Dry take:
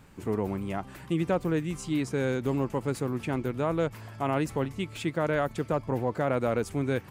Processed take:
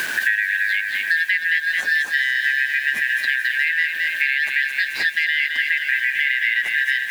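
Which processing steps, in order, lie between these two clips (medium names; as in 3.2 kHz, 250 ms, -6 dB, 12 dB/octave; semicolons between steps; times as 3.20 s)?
four frequency bands reordered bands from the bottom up 4123; peaking EQ 7.8 kHz -12.5 dB 0.85 oct; hum notches 60/120/180 Hz; in parallel at +1 dB: gain riding within 5 dB 2 s; on the sum: word length cut 8-bit, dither none; on a send: feedback echo behind a high-pass 217 ms, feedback 61%, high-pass 1.9 kHz, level -3.5 dB; on the sum: three bands compressed up and down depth 100%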